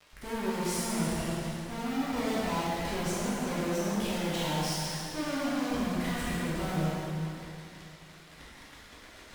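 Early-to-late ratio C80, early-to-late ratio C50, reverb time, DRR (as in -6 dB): -1.5 dB, -3.5 dB, 2.7 s, -9.5 dB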